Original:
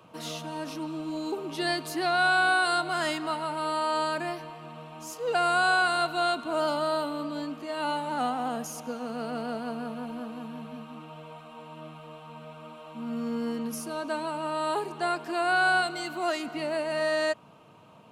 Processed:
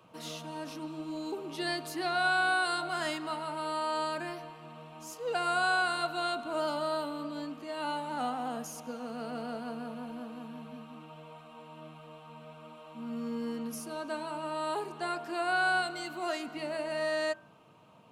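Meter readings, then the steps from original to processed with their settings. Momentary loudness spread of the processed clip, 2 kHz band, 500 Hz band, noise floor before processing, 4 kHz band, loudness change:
21 LU, -4.5 dB, -5.0 dB, -51 dBFS, -4.5 dB, -5.0 dB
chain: de-hum 53.86 Hz, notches 34; gain -4.5 dB

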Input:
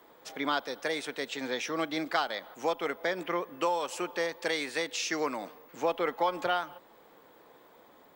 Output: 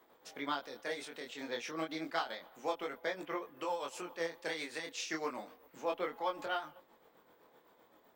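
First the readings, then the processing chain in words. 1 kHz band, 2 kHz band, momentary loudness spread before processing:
-7.5 dB, -7.5 dB, 5 LU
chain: tremolo 7.8 Hz, depth 54%; vibrato 12 Hz 36 cents; chorus 0.31 Hz, delay 20 ms, depth 5.5 ms; gain -2.5 dB

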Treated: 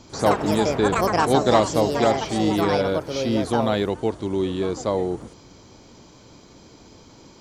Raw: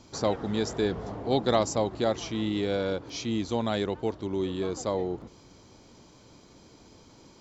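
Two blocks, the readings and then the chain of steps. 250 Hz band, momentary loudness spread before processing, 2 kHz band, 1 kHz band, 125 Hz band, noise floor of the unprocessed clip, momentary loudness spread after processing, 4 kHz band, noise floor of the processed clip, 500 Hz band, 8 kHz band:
+7.0 dB, 6 LU, +10.0 dB, +11.0 dB, +7.0 dB, -55 dBFS, 7 LU, +5.5 dB, -49 dBFS, +7.5 dB, n/a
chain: dynamic EQ 6700 Hz, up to -5 dB, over -49 dBFS, Q 0.9; echoes that change speed 96 ms, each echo +6 st, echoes 2; gain +6 dB

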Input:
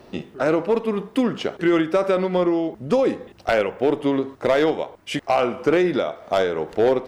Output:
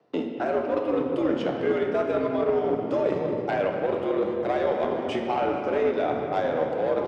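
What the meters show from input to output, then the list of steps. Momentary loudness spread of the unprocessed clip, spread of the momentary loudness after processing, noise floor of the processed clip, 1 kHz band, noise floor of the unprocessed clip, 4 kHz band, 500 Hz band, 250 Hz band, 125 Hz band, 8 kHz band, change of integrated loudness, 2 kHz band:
5 LU, 3 LU, -32 dBFS, -2.5 dB, -48 dBFS, -9.0 dB, -3.5 dB, -6.0 dB, -5.5 dB, n/a, -4.0 dB, -6.5 dB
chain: gate -35 dBFS, range -32 dB; LPF 7300 Hz 12 dB/oct; frequency-shifting echo 0.232 s, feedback 57%, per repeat -140 Hz, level -18.5 dB; in parallel at -6.5 dB: soft clip -24.5 dBFS, distortion -7 dB; on the sum: frequency shift +80 Hz; reverse; compressor 6:1, threshold -25 dBFS, peak gain reduction 12.5 dB; reverse; shoebox room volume 160 m³, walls hard, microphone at 0.36 m; added harmonics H 3 -19 dB, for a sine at -13.5 dBFS; high shelf 2800 Hz -9 dB; three-band squash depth 40%; gain +3 dB

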